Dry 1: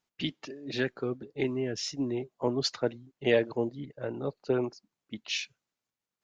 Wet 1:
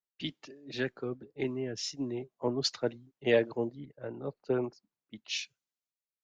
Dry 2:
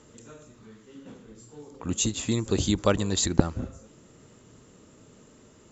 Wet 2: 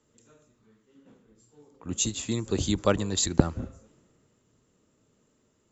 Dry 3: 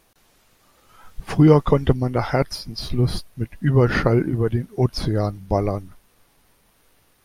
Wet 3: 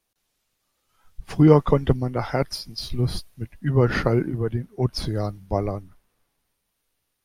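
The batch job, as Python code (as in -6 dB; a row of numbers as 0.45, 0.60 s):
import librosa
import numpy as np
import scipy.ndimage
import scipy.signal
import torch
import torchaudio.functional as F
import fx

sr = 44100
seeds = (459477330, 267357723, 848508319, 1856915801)

y = fx.band_widen(x, sr, depth_pct=40)
y = y * 10.0 ** (-3.5 / 20.0)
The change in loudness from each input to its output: -2.5, -1.0, -2.0 LU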